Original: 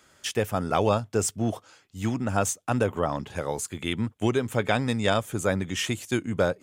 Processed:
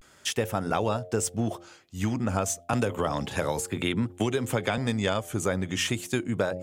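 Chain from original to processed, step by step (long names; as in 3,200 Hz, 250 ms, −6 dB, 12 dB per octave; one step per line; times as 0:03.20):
hum removal 87.73 Hz, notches 9
downward compressor 3 to 1, threshold −26 dBFS, peak gain reduction 7 dB
pitch vibrato 0.34 Hz 59 cents
0:02.73–0:04.78: multiband upward and downward compressor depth 70%
level +2.5 dB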